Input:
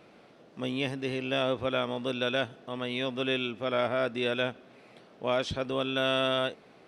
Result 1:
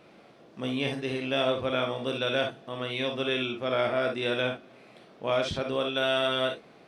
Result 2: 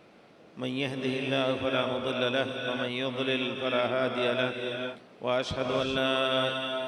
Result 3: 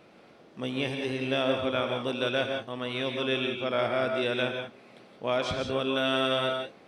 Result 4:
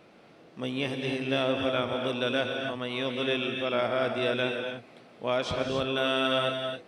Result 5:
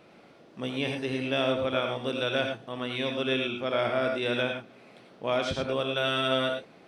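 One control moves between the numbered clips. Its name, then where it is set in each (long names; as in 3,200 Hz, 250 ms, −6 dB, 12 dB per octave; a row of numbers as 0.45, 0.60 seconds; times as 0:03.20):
reverb whose tail is shaped and stops, gate: 80, 470, 200, 310, 130 milliseconds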